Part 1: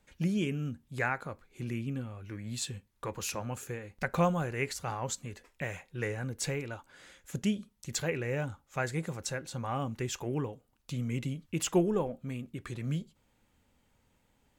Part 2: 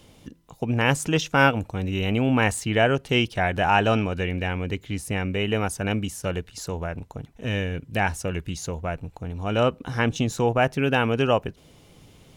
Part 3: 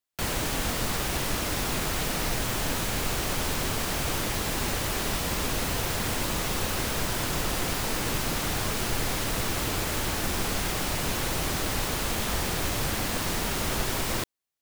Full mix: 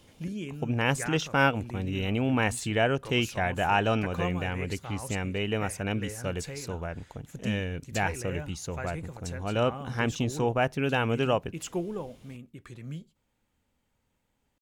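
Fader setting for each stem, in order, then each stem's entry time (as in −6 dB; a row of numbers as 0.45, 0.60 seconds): −5.5 dB, −5.0 dB, muted; 0.00 s, 0.00 s, muted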